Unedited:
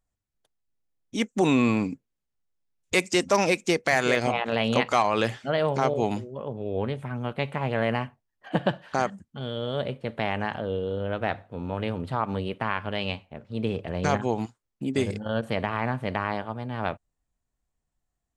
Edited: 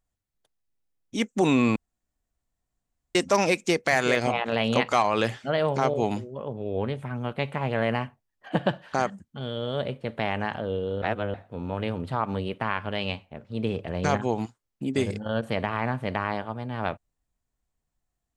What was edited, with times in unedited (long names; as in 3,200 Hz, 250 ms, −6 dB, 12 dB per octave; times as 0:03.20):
0:01.76–0:03.15: fill with room tone
0:11.02–0:11.34: reverse